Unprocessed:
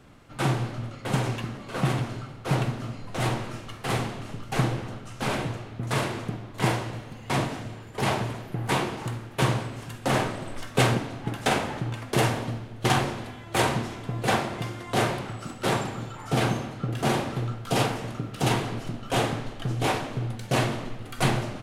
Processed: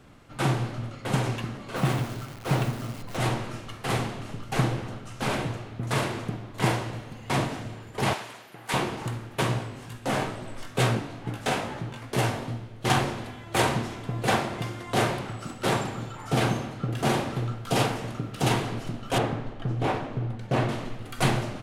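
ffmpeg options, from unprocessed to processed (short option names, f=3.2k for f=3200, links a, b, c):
-filter_complex "[0:a]asettb=1/sr,asplit=3[a][b][c];[a]atrim=end=1.764[d];[b]atrim=start=1.76:end=3.17,asetpts=PTS-STARTPTS,afade=t=in:d=0.004:c=qsin,afade=t=out:st=1.406:d=0.004:c=qsin,acrusher=bits=8:dc=4:mix=0:aa=0.000001[e];[c]atrim=start=3.166[f];[d][e]acrossfade=d=0.004:c1=hsin:c2=qsin[g];[g][f]acrossfade=d=0.004:c1=qsin:c2=hsin,asettb=1/sr,asplit=3[h][i][j];[h]atrim=end=8.134[k];[i]atrim=start=8.13:end=8.74,asetpts=PTS-STARTPTS,afade=t=in:d=0.004:c=qsin,afade=t=out:st=0.606:d=0.004:c=qsin,highpass=f=1.4k:p=1[l];[j]atrim=start=8.736[m];[k][l]acrossfade=d=0.004:c1=hsin:c2=qsin[n];[n][m]acrossfade=d=0.004:c1=qsin:c2=hsin,asplit=3[o][p][q];[o]afade=t=out:st=9.41:d=0.02[r];[p]flanger=delay=16:depth=5.3:speed=2.3,afade=t=in:st=9.41:d=0.02,afade=t=out:st=12.86:d=0.02[s];[q]afade=t=in:st=12.86:d=0.02[t];[r][s][t]amix=inputs=3:normalize=0,asettb=1/sr,asplit=3[u][v][w];[u]atrim=end=19.184[x];[v]atrim=start=19.18:end=20.69,asetpts=PTS-STARTPTS,afade=t=in:d=0.004:c=qsin,afade=t=out:st=1.506:d=0.004:c=qsin,lowpass=f=1.5k:p=1[y];[w]atrim=start=20.686[z];[x][y]acrossfade=d=0.004:c1=hsin:c2=qsin[aa];[aa][z]acrossfade=d=0.004:c1=qsin:c2=hsin"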